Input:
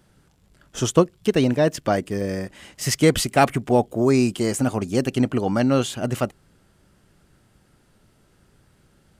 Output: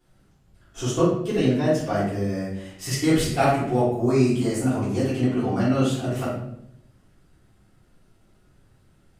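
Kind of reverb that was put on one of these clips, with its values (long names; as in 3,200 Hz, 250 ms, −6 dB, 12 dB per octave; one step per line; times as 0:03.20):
rectangular room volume 160 cubic metres, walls mixed, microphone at 3.4 metres
level −14.5 dB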